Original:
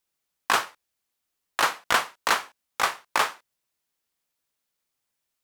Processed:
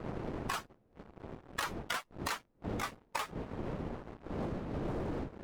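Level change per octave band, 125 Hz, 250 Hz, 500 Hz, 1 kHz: +13.5, +7.0, -4.0, -13.5 dB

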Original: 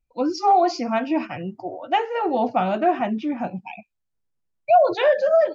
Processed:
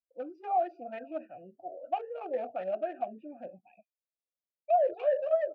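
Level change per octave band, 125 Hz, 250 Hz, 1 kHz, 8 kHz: under -20 dB, -22.0 dB, -13.0 dB, n/a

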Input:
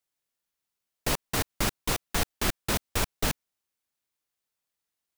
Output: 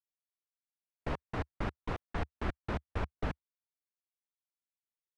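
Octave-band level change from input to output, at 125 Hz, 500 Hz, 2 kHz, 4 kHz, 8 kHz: -4.0, -6.5, -10.5, -20.0, -33.0 dB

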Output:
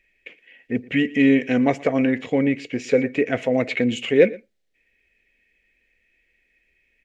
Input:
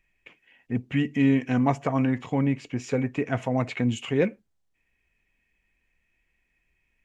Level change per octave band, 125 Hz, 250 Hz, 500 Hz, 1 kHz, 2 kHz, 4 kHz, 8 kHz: -4.0 dB, +4.5 dB, +9.0 dB, 0.0 dB, +8.5 dB, +7.5 dB, n/a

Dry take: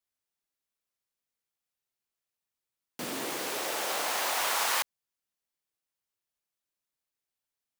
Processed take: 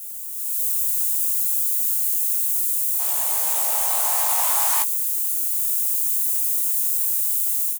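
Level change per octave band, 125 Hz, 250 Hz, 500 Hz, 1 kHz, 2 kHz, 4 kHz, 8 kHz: under -40 dB, under -20 dB, -1.5 dB, +4.5 dB, -2.0 dB, 0.0 dB, +16.0 dB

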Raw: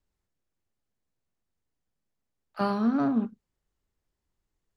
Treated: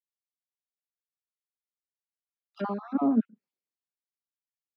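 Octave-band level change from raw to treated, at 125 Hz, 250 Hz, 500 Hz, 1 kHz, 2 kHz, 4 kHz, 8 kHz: -4.0 dB, -1.0 dB, -2.0 dB, -3.5 dB, -8.0 dB, under -10 dB, n/a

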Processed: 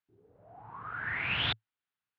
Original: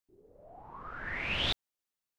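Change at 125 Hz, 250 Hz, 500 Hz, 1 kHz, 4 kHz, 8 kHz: +2.0 dB, -1.5 dB, -4.0 dB, +2.5 dB, 0.0 dB, under -15 dB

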